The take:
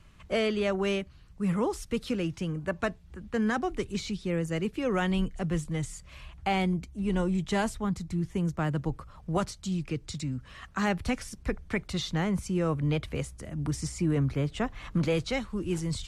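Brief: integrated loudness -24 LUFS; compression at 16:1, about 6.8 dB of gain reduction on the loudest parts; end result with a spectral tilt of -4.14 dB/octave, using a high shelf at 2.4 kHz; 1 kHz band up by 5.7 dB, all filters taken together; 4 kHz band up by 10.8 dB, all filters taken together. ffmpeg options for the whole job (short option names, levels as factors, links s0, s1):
-af "equalizer=f=1000:t=o:g=6,highshelf=f=2400:g=7.5,equalizer=f=4000:t=o:g=7,acompressor=threshold=0.0501:ratio=16,volume=2.51"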